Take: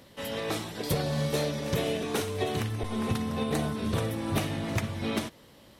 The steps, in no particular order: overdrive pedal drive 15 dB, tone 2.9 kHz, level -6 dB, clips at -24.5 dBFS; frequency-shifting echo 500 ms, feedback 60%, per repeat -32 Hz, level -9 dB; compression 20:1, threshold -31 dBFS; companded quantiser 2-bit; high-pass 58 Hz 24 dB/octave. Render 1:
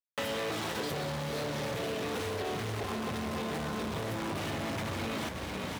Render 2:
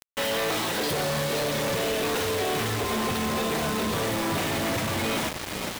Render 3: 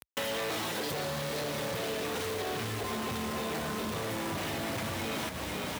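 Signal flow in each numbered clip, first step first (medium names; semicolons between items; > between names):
companded quantiser > overdrive pedal > frequency-shifting echo > high-pass > compression; compression > overdrive pedal > frequency-shifting echo > high-pass > companded quantiser; overdrive pedal > companded quantiser > frequency-shifting echo > high-pass > compression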